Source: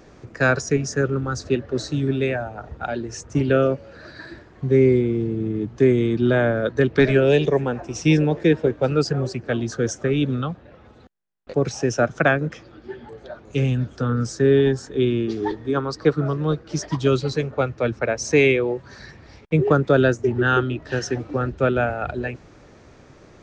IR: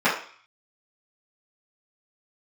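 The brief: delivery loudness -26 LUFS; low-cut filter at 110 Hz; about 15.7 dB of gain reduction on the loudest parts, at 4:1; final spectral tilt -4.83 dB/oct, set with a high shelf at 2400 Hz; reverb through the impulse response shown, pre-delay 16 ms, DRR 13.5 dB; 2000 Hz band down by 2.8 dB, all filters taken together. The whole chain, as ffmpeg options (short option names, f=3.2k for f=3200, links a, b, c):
-filter_complex "[0:a]highpass=110,equalizer=f=2k:t=o:g=-8,highshelf=f=2.4k:g=8,acompressor=threshold=-31dB:ratio=4,asplit=2[a][b];[1:a]atrim=start_sample=2205,adelay=16[c];[b][c]afir=irnorm=-1:irlink=0,volume=-32.5dB[d];[a][d]amix=inputs=2:normalize=0,volume=7.5dB"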